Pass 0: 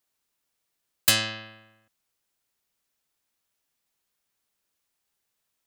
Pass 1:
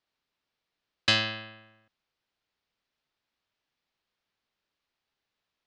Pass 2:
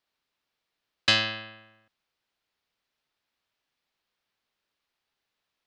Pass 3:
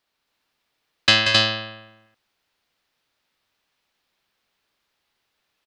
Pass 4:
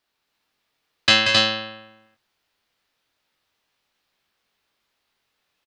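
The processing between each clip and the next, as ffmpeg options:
-af "lowpass=f=4700:w=0.5412,lowpass=f=4700:w=1.3066"
-af "lowshelf=f=360:g=-3.5,volume=1.26"
-af "aecho=1:1:183.7|265.3:0.447|0.794,volume=2"
-filter_complex "[0:a]asplit=2[s0][s1];[s1]adelay=22,volume=0.562[s2];[s0][s2]amix=inputs=2:normalize=0,volume=0.891"

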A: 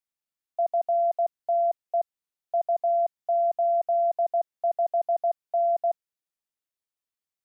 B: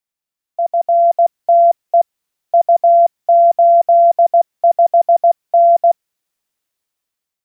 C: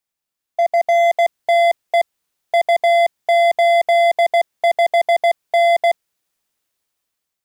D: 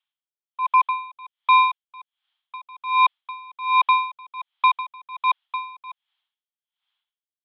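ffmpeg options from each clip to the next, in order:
-af "dynaudnorm=f=350:g=5:m=2.82,volume=1.78"
-af "asoftclip=type=hard:threshold=0.188,volume=1.33"
-af "equalizer=f=2900:t=o:w=0.33:g=14,highpass=f=440:t=q:w=0.5412,highpass=f=440:t=q:w=1.307,lowpass=f=3500:t=q:w=0.5176,lowpass=f=3500:t=q:w=0.7071,lowpass=f=3500:t=q:w=1.932,afreqshift=340,aeval=exprs='val(0)*pow(10,-28*(0.5-0.5*cos(2*PI*1.3*n/s))/20)':c=same"

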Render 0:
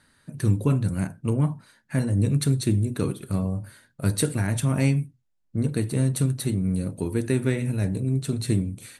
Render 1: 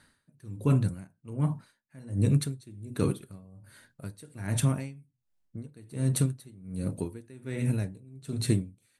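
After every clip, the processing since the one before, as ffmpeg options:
-af "aeval=exprs='val(0)*pow(10,-26*(0.5-0.5*cos(2*PI*1.3*n/s))/20)':c=same"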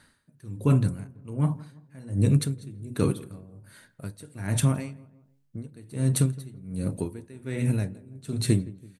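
-filter_complex "[0:a]asplit=2[s0][s1];[s1]adelay=166,lowpass=f=1400:p=1,volume=0.106,asplit=2[s2][s3];[s3]adelay=166,lowpass=f=1400:p=1,volume=0.44,asplit=2[s4][s5];[s5]adelay=166,lowpass=f=1400:p=1,volume=0.44[s6];[s0][s2][s4][s6]amix=inputs=4:normalize=0,volume=1.41"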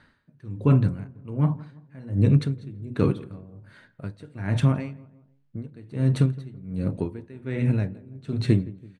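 -af "lowpass=3100,volume=1.33"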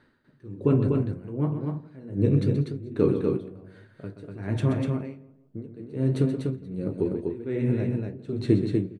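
-filter_complex "[0:a]equalizer=f=380:w=1.3:g=11.5,flanger=delay=7.8:depth=8.9:regen=-50:speed=1.1:shape=sinusoidal,asplit=2[s0][s1];[s1]aecho=0:1:128.3|244.9:0.316|0.631[s2];[s0][s2]amix=inputs=2:normalize=0,volume=0.75"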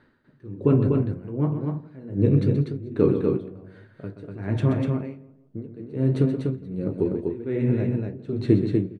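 -af "lowpass=f=3300:p=1,volume=1.33"

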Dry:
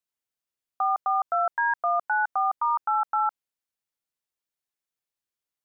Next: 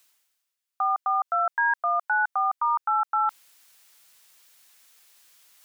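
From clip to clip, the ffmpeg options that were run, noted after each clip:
-af "tiltshelf=f=640:g=-8,areverse,acompressor=mode=upward:threshold=0.0251:ratio=2.5,areverse,volume=0.708"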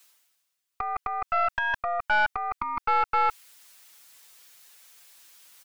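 -filter_complex "[0:a]aecho=1:1:7:0.9,acrossover=split=860[s0][s1];[s0]alimiter=level_in=3.35:limit=0.0631:level=0:latency=1:release=293,volume=0.299[s2];[s2][s1]amix=inputs=2:normalize=0,aeval=exprs='(tanh(10*val(0)+0.65)-tanh(0.65))/10':c=same,volume=1.68"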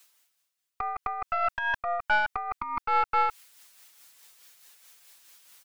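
-af "tremolo=f=4.7:d=0.42"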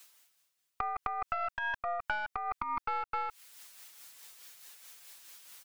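-af "acompressor=threshold=0.0224:ratio=10,volume=1.33"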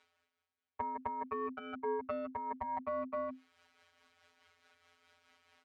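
-af "lowpass=2300,afftfilt=real='hypot(re,im)*cos(PI*b)':imag='0':win_size=1024:overlap=0.75,afreqshift=-260"

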